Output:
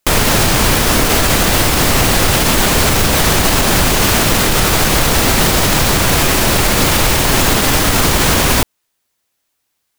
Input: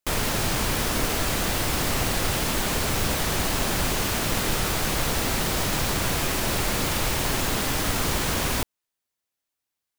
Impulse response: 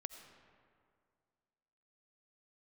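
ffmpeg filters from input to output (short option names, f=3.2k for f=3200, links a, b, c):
-af "alimiter=level_in=16dB:limit=-1dB:release=50:level=0:latency=1,volume=-1dB"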